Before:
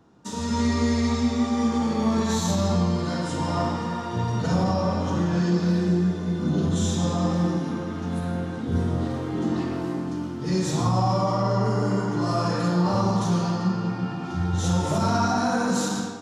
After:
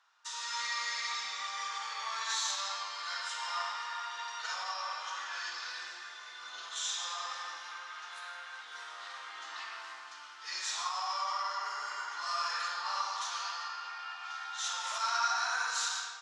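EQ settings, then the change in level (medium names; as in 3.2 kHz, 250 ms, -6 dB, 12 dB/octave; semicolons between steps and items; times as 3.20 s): high-pass 1.2 kHz 24 dB/octave; distance through air 110 m; treble shelf 4.3 kHz +7 dB; 0.0 dB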